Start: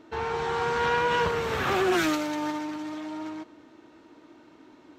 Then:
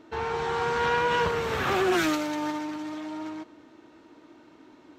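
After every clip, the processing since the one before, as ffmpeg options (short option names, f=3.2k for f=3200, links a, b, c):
-af anull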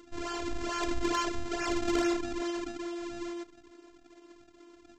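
-af "aresample=16000,acrusher=samples=18:mix=1:aa=0.000001:lfo=1:lforange=28.8:lforate=2.3,aresample=44100,afftfilt=real='hypot(re,im)*cos(PI*b)':imag='0':win_size=512:overlap=0.75,aeval=exprs='0.266*(cos(1*acos(clip(val(0)/0.266,-1,1)))-cos(1*PI/2))+0.0237*(cos(4*acos(clip(val(0)/0.266,-1,1)))-cos(4*PI/2))':c=same"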